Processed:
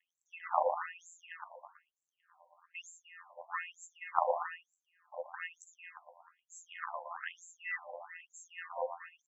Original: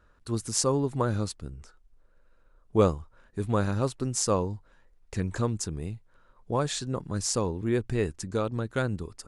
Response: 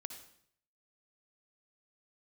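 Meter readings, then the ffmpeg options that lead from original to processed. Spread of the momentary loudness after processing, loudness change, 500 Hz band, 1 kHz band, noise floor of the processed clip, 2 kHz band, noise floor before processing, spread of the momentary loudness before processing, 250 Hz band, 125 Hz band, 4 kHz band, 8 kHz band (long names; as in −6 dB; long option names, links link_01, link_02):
20 LU, −10.5 dB, −12.0 dB, −2.0 dB, below −85 dBFS, −1.0 dB, −61 dBFS, 13 LU, below −40 dB, below −40 dB, −18.0 dB, −22.0 dB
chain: -filter_complex "[0:a]acrossover=split=450|3000[link_01][link_02][link_03];[link_02]acompressor=threshold=-39dB:ratio=3[link_04];[link_01][link_04][link_03]amix=inputs=3:normalize=0,acrusher=bits=9:mix=0:aa=0.000001,afftfilt=real='hypot(re,im)*cos(PI*b)':imag='0':win_size=1024:overlap=0.75,acrusher=samples=19:mix=1:aa=0.000001,asuperstop=centerf=4400:order=8:qfactor=0.97,asplit=2[link_05][link_06];[link_06]adelay=117,lowpass=frequency=3600:poles=1,volume=-5.5dB,asplit=2[link_07][link_08];[link_08]adelay=117,lowpass=frequency=3600:poles=1,volume=0.51,asplit=2[link_09][link_10];[link_10]adelay=117,lowpass=frequency=3600:poles=1,volume=0.51,asplit=2[link_11][link_12];[link_12]adelay=117,lowpass=frequency=3600:poles=1,volume=0.51,asplit=2[link_13][link_14];[link_14]adelay=117,lowpass=frequency=3600:poles=1,volume=0.51,asplit=2[link_15][link_16];[link_16]adelay=117,lowpass=frequency=3600:poles=1,volume=0.51[link_17];[link_07][link_09][link_11][link_13][link_15][link_17]amix=inputs=6:normalize=0[link_18];[link_05][link_18]amix=inputs=2:normalize=0,afftfilt=real='re*between(b*sr/1024,720*pow(5600/720,0.5+0.5*sin(2*PI*1.1*pts/sr))/1.41,720*pow(5600/720,0.5+0.5*sin(2*PI*1.1*pts/sr))*1.41)':imag='im*between(b*sr/1024,720*pow(5600/720,0.5+0.5*sin(2*PI*1.1*pts/sr))/1.41,720*pow(5600/720,0.5+0.5*sin(2*PI*1.1*pts/sr))*1.41)':win_size=1024:overlap=0.75,volume=7dB"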